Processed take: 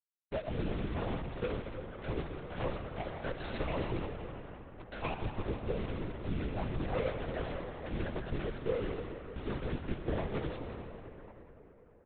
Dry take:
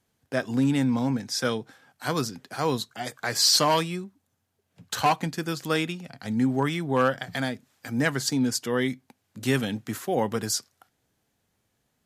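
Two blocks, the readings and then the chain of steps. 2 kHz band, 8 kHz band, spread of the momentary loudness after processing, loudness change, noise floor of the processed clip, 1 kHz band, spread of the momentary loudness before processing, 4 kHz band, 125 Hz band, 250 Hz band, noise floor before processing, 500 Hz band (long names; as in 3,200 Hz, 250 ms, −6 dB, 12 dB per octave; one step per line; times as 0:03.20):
−13.5 dB, below −40 dB, 11 LU, −12.5 dB, −59 dBFS, −14.0 dB, 10 LU, −22.0 dB, −7.0 dB, −13.0 dB, −75 dBFS, −8.0 dB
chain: running median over 41 samples
reverb reduction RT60 0.53 s
comb filter 6 ms, depth 98%
downward compressor, threshold −30 dBFS, peak gain reduction 11.5 dB
bit reduction 7 bits
pitch vibrato 11 Hz 27 cents
Chebyshev high-pass filter 210 Hz, order 2
feedback echo with a band-pass in the loop 164 ms, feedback 70%, band-pass 1,300 Hz, level −8 dB
comb and all-pass reverb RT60 3.8 s, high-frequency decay 0.55×, pre-delay 45 ms, DRR 4 dB
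linear-prediction vocoder at 8 kHz whisper
level −1 dB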